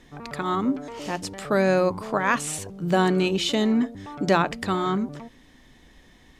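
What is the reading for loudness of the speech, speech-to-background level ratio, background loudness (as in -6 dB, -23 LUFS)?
-24.5 LUFS, 14.5 dB, -39.0 LUFS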